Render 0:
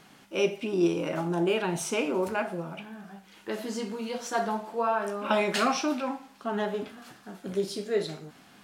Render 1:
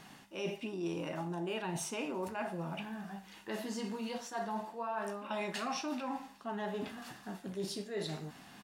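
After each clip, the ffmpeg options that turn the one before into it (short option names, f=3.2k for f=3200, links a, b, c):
-af "aecho=1:1:1.1:0.3,areverse,acompressor=threshold=-36dB:ratio=5,areverse"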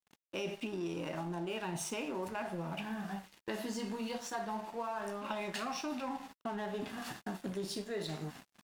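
-af "agate=range=-15dB:threshold=-52dB:ratio=16:detection=peak,acompressor=threshold=-42dB:ratio=6,aeval=exprs='sgn(val(0))*max(abs(val(0))-0.001,0)':c=same,volume=7.5dB"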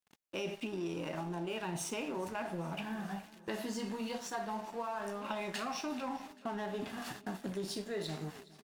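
-af "aecho=1:1:414|828|1242|1656|2070:0.1|0.057|0.0325|0.0185|0.0106"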